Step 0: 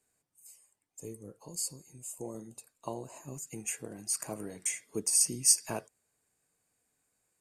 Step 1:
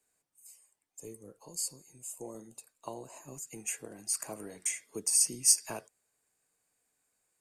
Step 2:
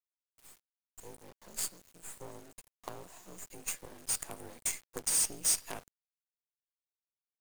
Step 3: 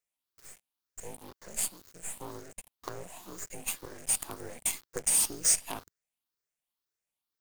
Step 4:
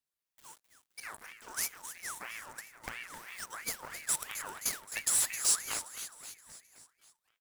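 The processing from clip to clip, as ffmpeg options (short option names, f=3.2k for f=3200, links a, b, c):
-filter_complex "[0:a]equalizer=f=100:w=0.38:g=-7,acrossover=split=180|3000[a][b][c];[b]acompressor=threshold=-35dB:ratio=6[d];[a][d][c]amix=inputs=3:normalize=0"
-af "afreqshift=47,asoftclip=type=tanh:threshold=-24dB,acrusher=bits=6:dc=4:mix=0:aa=0.000001"
-filter_complex "[0:a]afftfilt=real='re*pow(10,8/40*sin(2*PI*(0.53*log(max(b,1)*sr/1024/100)/log(2)-(2)*(pts-256)/sr)))':imag='im*pow(10,8/40*sin(2*PI*(0.53*log(max(b,1)*sr/1024/100)/log(2)-(2)*(pts-256)/sr)))':win_size=1024:overlap=0.75,asplit=2[a][b];[b]alimiter=level_in=5dB:limit=-24dB:level=0:latency=1:release=277,volume=-5dB,volume=-2dB[c];[a][c]amix=inputs=2:normalize=0"
-filter_complex "[0:a]asplit=2[a][b];[b]aecho=0:1:262|524|786|1048|1310|1572:0.282|0.158|0.0884|0.0495|0.0277|0.0155[c];[a][c]amix=inputs=2:normalize=0,aeval=exprs='val(0)*sin(2*PI*1600*n/s+1600*0.45/3*sin(2*PI*3*n/s))':c=same"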